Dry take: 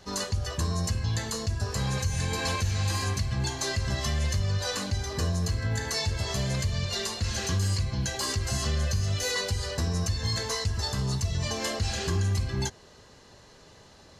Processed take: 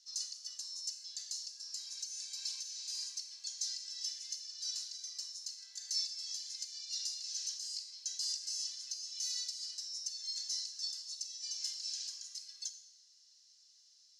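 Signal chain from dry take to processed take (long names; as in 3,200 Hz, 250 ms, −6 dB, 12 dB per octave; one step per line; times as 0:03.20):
four-pole ladder band-pass 5,800 Hz, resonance 65%
four-comb reverb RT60 0.84 s, combs from 27 ms, DRR 8.5 dB
level +1 dB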